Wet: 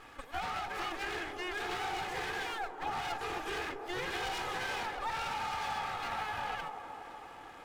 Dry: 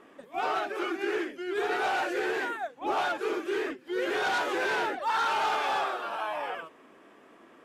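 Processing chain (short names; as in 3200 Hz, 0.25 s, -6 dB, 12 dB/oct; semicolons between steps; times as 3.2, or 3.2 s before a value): minimum comb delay 2.4 ms; bell 390 Hz -14 dB 0.73 oct; compressor 6:1, threshold -42 dBFS, peak gain reduction 14.5 dB; on a send: band-limited delay 0.24 s, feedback 70%, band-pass 490 Hz, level -5 dB; on the sum: gain +6.5 dB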